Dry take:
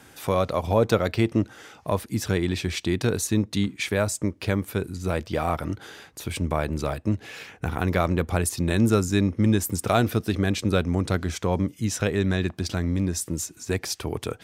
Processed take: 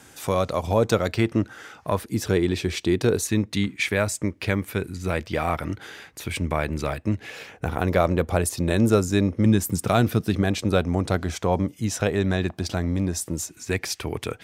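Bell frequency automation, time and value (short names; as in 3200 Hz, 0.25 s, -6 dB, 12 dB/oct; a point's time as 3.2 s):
bell +6 dB 0.85 oct
7200 Hz
from 1.17 s 1500 Hz
from 2.02 s 410 Hz
from 3.25 s 2100 Hz
from 7.3 s 570 Hz
from 9.45 s 160 Hz
from 10.42 s 710 Hz
from 13.5 s 2200 Hz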